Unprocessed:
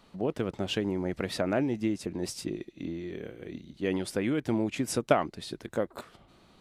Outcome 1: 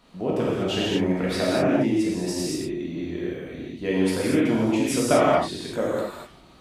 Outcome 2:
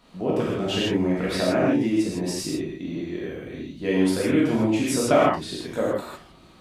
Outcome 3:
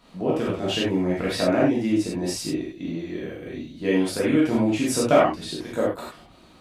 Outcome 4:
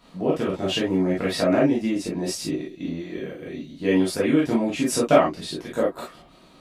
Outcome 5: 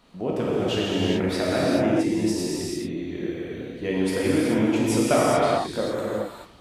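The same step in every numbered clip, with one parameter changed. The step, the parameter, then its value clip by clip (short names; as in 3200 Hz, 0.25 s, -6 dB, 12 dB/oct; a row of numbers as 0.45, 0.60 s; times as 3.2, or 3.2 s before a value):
non-linear reverb, gate: 270, 180, 120, 80, 460 ms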